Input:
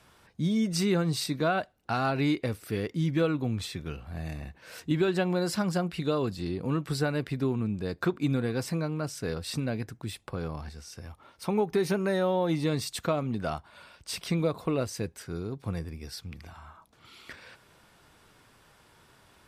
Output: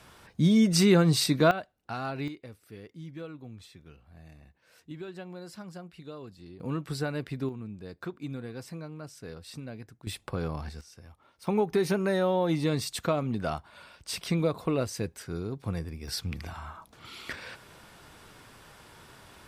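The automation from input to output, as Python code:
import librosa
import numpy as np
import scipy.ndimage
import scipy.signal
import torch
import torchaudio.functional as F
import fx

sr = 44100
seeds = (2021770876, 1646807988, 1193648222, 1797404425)

y = fx.gain(x, sr, db=fx.steps((0.0, 5.5), (1.51, -6.5), (2.28, -15.0), (6.6, -3.5), (7.49, -10.0), (10.07, 2.0), (10.81, -7.5), (11.47, 0.5), (16.08, 7.0)))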